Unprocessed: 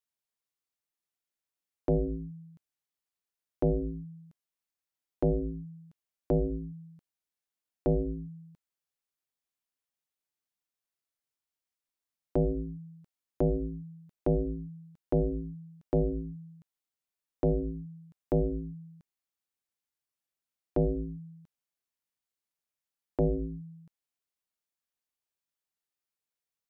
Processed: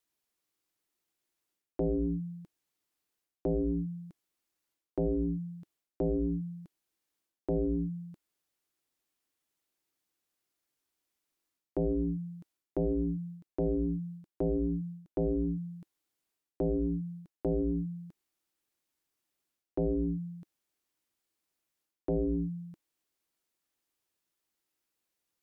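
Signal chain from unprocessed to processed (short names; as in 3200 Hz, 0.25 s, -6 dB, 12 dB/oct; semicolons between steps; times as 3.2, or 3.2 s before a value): bell 310 Hz +8.5 dB 0.55 oct; reverse; compressor 6:1, threshold -35 dBFS, peak gain reduction 15 dB; reverse; varispeed +5%; gain +6.5 dB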